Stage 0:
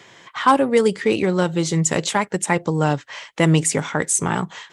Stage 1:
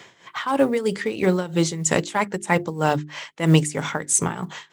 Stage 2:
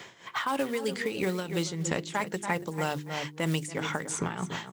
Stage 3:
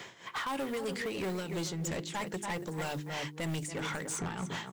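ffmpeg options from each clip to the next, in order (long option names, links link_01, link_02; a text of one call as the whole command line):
ffmpeg -i in.wav -af "tremolo=f=3.1:d=0.8,acrusher=bits=9:mode=log:mix=0:aa=0.000001,bandreject=frequency=50:width_type=h:width=6,bandreject=frequency=100:width_type=h:width=6,bandreject=frequency=150:width_type=h:width=6,bandreject=frequency=200:width_type=h:width=6,bandreject=frequency=250:width_type=h:width=6,bandreject=frequency=300:width_type=h:width=6,bandreject=frequency=350:width_type=h:width=6,bandreject=frequency=400:width_type=h:width=6,volume=2dB" out.wav
ffmpeg -i in.wav -filter_complex "[0:a]asplit=2[link_01][link_02];[link_02]adelay=283,lowpass=frequency=2900:poles=1,volume=-13dB,asplit=2[link_03][link_04];[link_04]adelay=283,lowpass=frequency=2900:poles=1,volume=0.21[link_05];[link_01][link_03][link_05]amix=inputs=3:normalize=0,acrusher=bits=7:mode=log:mix=0:aa=0.000001,acrossover=split=1900|5300[link_06][link_07][link_08];[link_06]acompressor=threshold=-29dB:ratio=4[link_09];[link_07]acompressor=threshold=-37dB:ratio=4[link_10];[link_08]acompressor=threshold=-45dB:ratio=4[link_11];[link_09][link_10][link_11]amix=inputs=3:normalize=0" out.wav
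ffmpeg -i in.wav -af "asoftclip=type=tanh:threshold=-31dB" out.wav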